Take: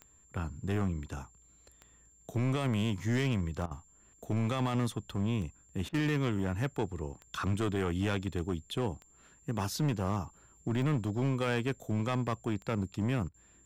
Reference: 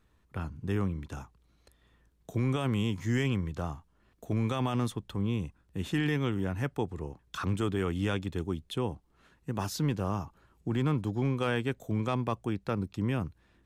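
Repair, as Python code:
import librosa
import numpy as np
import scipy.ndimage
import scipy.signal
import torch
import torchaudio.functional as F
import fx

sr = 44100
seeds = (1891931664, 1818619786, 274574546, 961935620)

y = fx.fix_declip(x, sr, threshold_db=-24.5)
y = fx.fix_declick_ar(y, sr, threshold=10.0)
y = fx.notch(y, sr, hz=7300.0, q=30.0)
y = fx.fix_interpolate(y, sr, at_s=(3.66, 5.89, 13.29), length_ms=50.0)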